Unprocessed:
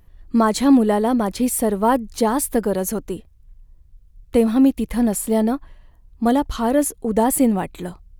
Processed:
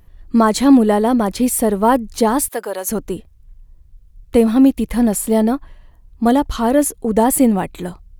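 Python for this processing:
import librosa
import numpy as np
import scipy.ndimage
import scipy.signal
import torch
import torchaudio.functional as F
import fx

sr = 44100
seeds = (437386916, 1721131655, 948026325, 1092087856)

y = fx.highpass(x, sr, hz=660.0, slope=12, at=(2.48, 2.9))
y = y * librosa.db_to_amplitude(3.5)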